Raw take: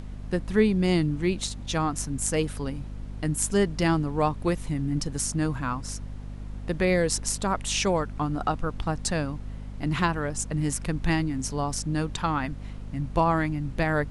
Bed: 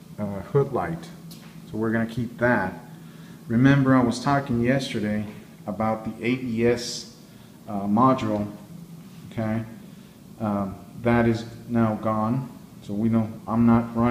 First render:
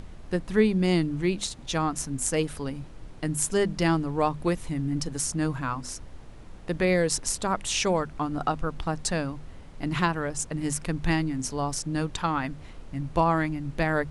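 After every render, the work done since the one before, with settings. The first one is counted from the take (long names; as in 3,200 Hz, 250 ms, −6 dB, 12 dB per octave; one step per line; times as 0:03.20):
mains-hum notches 50/100/150/200/250 Hz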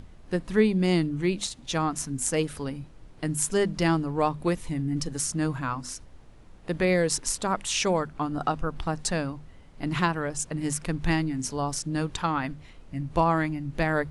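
noise reduction from a noise print 6 dB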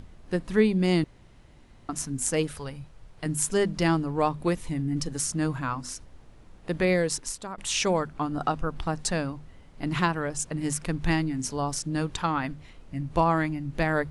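0:01.04–0:01.89: fill with room tone
0:02.52–0:03.26: parametric band 280 Hz −10.5 dB 0.87 octaves
0:06.90–0:07.58: fade out, to −14 dB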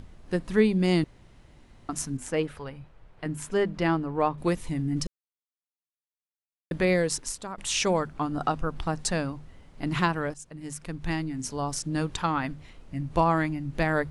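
0:02.17–0:04.38: bass and treble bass −4 dB, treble −14 dB
0:05.07–0:06.71: silence
0:10.34–0:11.95: fade in, from −15 dB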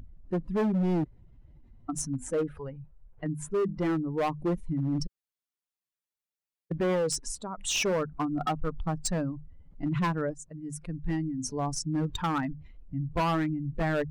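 expanding power law on the bin magnitudes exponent 1.8
hard clipping −23.5 dBFS, distortion −10 dB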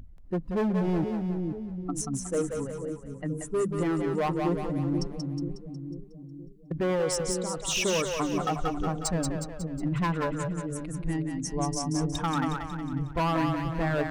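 echo with a time of its own for lows and highs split 430 Hz, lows 484 ms, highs 182 ms, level −4 dB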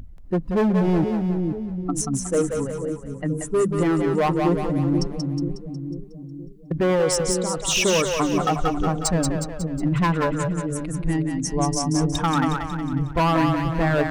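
level +7 dB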